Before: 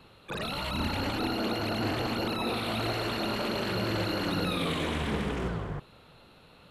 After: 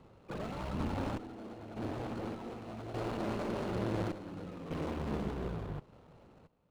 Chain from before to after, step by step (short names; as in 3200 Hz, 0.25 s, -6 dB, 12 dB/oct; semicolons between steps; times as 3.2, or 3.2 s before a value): median filter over 25 samples; random-step tremolo 1.7 Hz, depth 85%; one-sided clip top -40.5 dBFS; decimation joined by straight lines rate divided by 3×